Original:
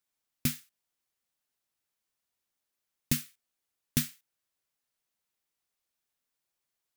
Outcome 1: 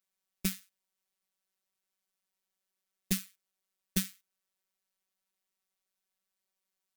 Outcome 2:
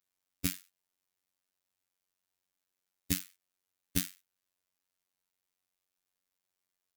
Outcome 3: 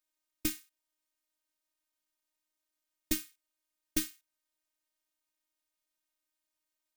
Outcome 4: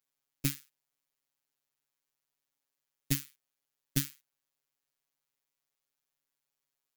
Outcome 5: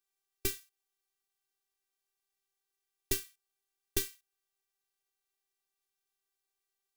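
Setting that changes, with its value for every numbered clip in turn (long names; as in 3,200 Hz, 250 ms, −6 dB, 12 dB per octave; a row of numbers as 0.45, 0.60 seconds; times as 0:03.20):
phases set to zero, frequency: 190, 92, 310, 140, 390 Hertz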